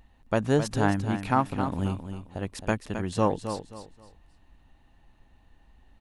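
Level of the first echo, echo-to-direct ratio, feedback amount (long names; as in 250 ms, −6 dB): −9.0 dB, −8.5 dB, 28%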